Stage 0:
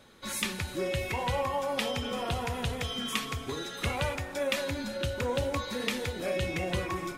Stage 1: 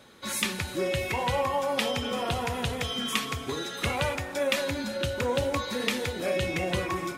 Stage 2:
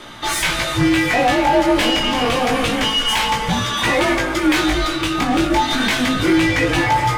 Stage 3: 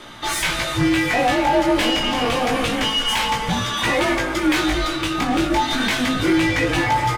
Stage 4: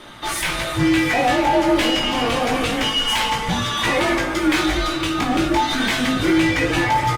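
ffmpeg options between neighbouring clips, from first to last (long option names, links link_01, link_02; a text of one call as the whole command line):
ffmpeg -i in.wav -af "highpass=frequency=90:poles=1,volume=3.5dB" out.wav
ffmpeg -i in.wav -filter_complex "[0:a]asplit=2[link_01][link_02];[link_02]highpass=frequency=720:poles=1,volume=27dB,asoftclip=type=tanh:threshold=-8dB[link_03];[link_01][link_03]amix=inputs=2:normalize=0,lowpass=frequency=3600:poles=1,volume=-6dB,afreqshift=-230,flanger=delay=17:depth=3.8:speed=0.28,volume=3.5dB" out.wav
ffmpeg -i in.wav -af "aecho=1:1:870:0.0944,volume=-2.5dB" out.wav
ffmpeg -i in.wav -filter_complex "[0:a]asplit=2[link_01][link_02];[link_02]adelay=50,volume=-11dB[link_03];[link_01][link_03]amix=inputs=2:normalize=0" -ar 48000 -c:a libopus -b:a 32k out.opus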